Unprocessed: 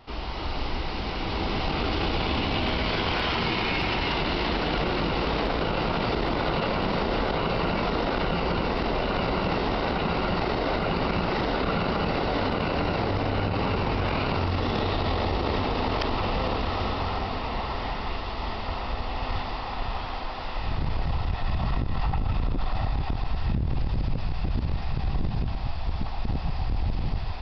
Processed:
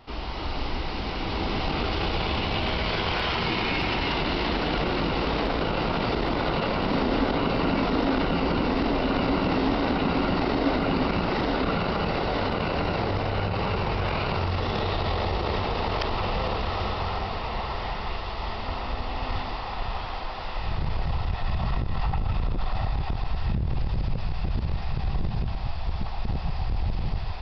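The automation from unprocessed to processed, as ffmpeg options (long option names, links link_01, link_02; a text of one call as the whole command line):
ffmpeg -i in.wav -af "asetnsamples=nb_out_samples=441:pad=0,asendcmd='1.85 equalizer g -6.5;3.48 equalizer g 2.5;6.91 equalizer g 11;11.02 equalizer g 5;11.74 equalizer g -3;13.21 equalizer g -10;18.59 equalizer g 1;19.55 equalizer g -7',equalizer=frequency=270:width_type=o:width=0.33:gain=1.5" out.wav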